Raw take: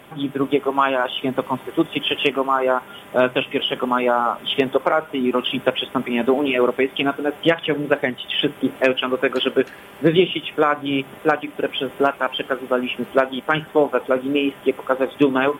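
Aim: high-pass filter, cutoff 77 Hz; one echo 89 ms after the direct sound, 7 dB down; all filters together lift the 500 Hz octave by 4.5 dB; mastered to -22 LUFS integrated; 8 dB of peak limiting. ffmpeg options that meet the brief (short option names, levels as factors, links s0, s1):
-af "highpass=77,equalizer=f=500:t=o:g=5.5,alimiter=limit=0.422:level=0:latency=1,aecho=1:1:89:0.447,volume=0.75"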